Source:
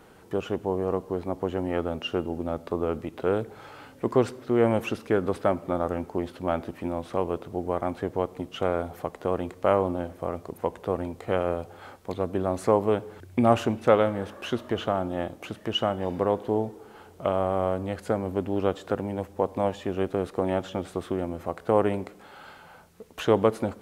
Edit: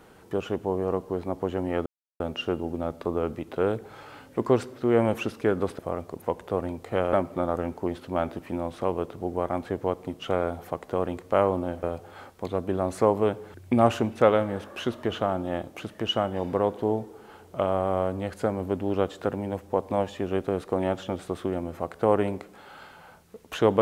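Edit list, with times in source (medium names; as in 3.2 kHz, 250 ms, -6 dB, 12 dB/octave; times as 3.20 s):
1.86 s: insert silence 0.34 s
10.15–11.49 s: move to 5.45 s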